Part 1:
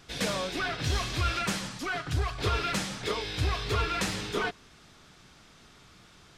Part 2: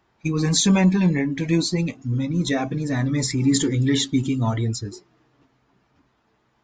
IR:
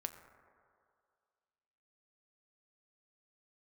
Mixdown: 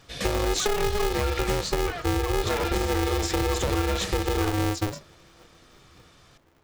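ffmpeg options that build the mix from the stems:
-filter_complex "[0:a]aecho=1:1:1.7:0.36,volume=0.891[s0];[1:a]lowshelf=f=230:g=11,acompressor=threshold=0.141:ratio=6,aeval=exprs='val(0)*sgn(sin(2*PI*210*n/s))':c=same,volume=0.944[s1];[s0][s1]amix=inputs=2:normalize=0,acompressor=threshold=0.0708:ratio=3"

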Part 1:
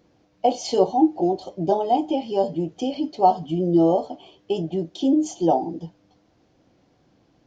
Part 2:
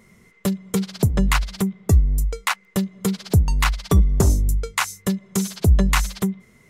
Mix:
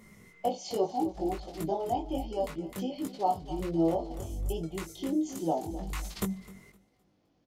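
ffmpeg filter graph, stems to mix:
-filter_complex "[0:a]volume=0.422,asplit=3[s0][s1][s2];[s1]volume=0.168[s3];[1:a]lowpass=f=2000:p=1,aemphasis=mode=production:type=75fm,acompressor=threshold=0.0631:ratio=6,volume=1.19,asplit=2[s4][s5];[s5]volume=0.075[s6];[s2]apad=whole_len=295336[s7];[s4][s7]sidechaincompress=threshold=0.00708:ratio=8:attack=48:release=528[s8];[s3][s6]amix=inputs=2:normalize=0,aecho=0:1:258|516|774|1032:1|0.3|0.09|0.027[s9];[s0][s8][s9]amix=inputs=3:normalize=0,bandreject=f=1600:w=19,flanger=delay=18.5:depth=2.8:speed=1.3"

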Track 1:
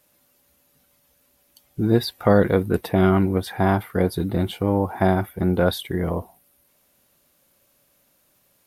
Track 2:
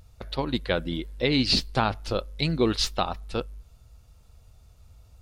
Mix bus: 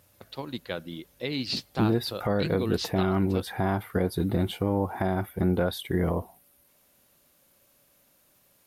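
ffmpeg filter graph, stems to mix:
-filter_complex "[0:a]alimiter=limit=0.211:level=0:latency=1:release=272,volume=0.944[s0];[1:a]highpass=f=95:w=0.5412,highpass=f=95:w=1.3066,volume=0.398[s1];[s0][s1]amix=inputs=2:normalize=0"

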